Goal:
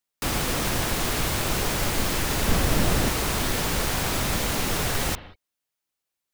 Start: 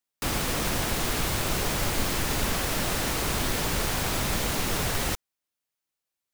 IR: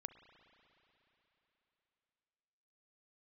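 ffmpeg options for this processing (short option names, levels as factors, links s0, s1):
-filter_complex "[0:a]asettb=1/sr,asplit=3[s0][s1][s2];[s0]atrim=end=2.484[s3];[s1]atrim=start=2.48:end=3.09,asetpts=PTS-STARTPTS,afade=t=in:d=0.004:c=qsin,afade=t=out:st=0.606:d=0.004:c=qsin,lowshelf=f=430:g=8[s4];[s2]atrim=start=3.086[s5];[s3][s4]acrossfade=d=0.004:c1=hsin:c2=qsin[s6];[s6][s5]acrossfade=d=0.004:c1=qsin:c2=hsin[s7];[1:a]atrim=start_sample=2205,afade=t=out:st=0.25:d=0.01,atrim=end_sample=11466[s8];[s7][s8]afir=irnorm=-1:irlink=0,volume=2.24"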